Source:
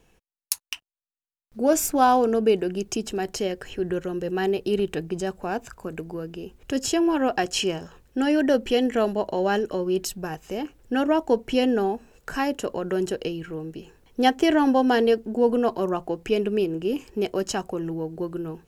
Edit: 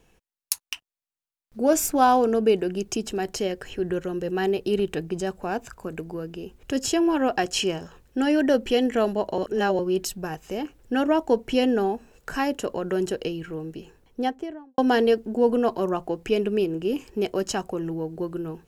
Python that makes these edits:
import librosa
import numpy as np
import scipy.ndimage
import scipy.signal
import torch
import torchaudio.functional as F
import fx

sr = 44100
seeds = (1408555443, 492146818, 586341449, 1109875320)

y = fx.studio_fade_out(x, sr, start_s=13.76, length_s=1.02)
y = fx.edit(y, sr, fx.reverse_span(start_s=9.38, length_s=0.41), tone=tone)